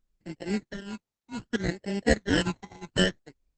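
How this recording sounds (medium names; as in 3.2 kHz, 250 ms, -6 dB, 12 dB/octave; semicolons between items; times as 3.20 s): aliases and images of a low sample rate 1.2 kHz, jitter 0%; phasing stages 12, 0.65 Hz, lowest notch 510–1200 Hz; tremolo triangle 2.1 Hz, depth 90%; Opus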